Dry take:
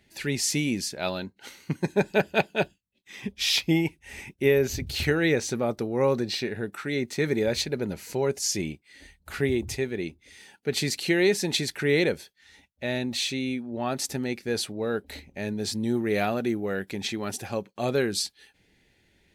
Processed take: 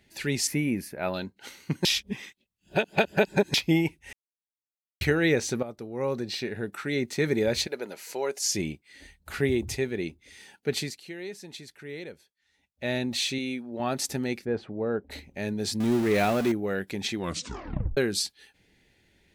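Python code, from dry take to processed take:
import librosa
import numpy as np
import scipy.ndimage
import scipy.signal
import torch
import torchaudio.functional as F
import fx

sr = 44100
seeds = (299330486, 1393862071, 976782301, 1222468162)

y = fx.band_shelf(x, sr, hz=5000.0, db=-16.0, octaves=1.7, at=(0.47, 1.14))
y = fx.highpass(y, sr, hz=480.0, slope=12, at=(7.67, 8.44))
y = fx.low_shelf(y, sr, hz=160.0, db=-11.0, at=(13.38, 13.8))
y = fx.lowpass(y, sr, hz=1300.0, slope=12, at=(14.44, 15.1), fade=0.02)
y = fx.zero_step(y, sr, step_db=-29.0, at=(15.8, 16.52))
y = fx.edit(y, sr, fx.reverse_span(start_s=1.85, length_s=1.69),
    fx.silence(start_s=4.13, length_s=0.88),
    fx.fade_in_from(start_s=5.63, length_s=1.17, floor_db=-13.5),
    fx.fade_down_up(start_s=10.69, length_s=2.18, db=-16.5, fade_s=0.28),
    fx.tape_stop(start_s=17.15, length_s=0.82), tone=tone)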